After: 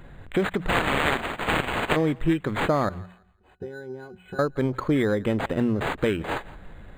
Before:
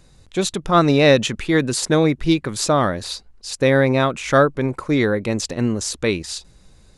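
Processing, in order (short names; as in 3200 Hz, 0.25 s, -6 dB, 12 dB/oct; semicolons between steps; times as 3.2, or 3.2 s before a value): 0.68–1.95 spectral contrast lowered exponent 0.12; notches 60/120/180 Hz; compressor 3:1, threshold -30 dBFS, peak gain reduction 16.5 dB; 2.89–4.39 octave resonator F#, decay 0.13 s; thinning echo 0.169 s, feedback 31%, high-pass 960 Hz, level -19.5 dB; decimation joined by straight lines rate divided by 8×; gain +7 dB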